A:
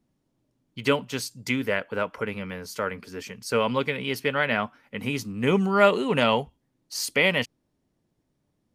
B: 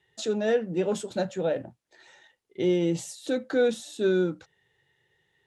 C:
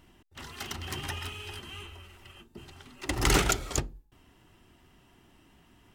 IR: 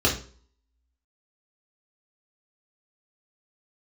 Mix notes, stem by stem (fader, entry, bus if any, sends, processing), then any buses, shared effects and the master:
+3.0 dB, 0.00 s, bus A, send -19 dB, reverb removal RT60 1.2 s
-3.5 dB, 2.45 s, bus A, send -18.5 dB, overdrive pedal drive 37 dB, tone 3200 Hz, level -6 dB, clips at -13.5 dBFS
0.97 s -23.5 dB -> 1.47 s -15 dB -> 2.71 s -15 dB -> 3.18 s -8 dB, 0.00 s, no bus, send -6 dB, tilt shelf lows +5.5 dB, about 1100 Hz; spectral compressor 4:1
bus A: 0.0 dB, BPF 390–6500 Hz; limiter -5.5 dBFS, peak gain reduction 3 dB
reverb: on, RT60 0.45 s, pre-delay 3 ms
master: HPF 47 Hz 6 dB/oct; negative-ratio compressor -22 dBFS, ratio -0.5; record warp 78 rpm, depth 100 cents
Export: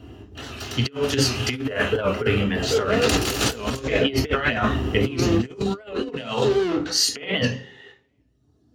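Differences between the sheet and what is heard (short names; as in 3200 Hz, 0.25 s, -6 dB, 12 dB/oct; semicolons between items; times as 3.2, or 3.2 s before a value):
stem B -3.5 dB -> -14.0 dB; reverb return +6.5 dB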